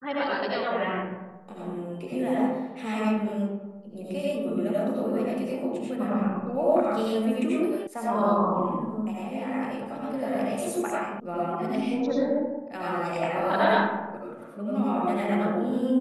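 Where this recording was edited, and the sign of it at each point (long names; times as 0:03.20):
0:07.87: cut off before it has died away
0:11.20: cut off before it has died away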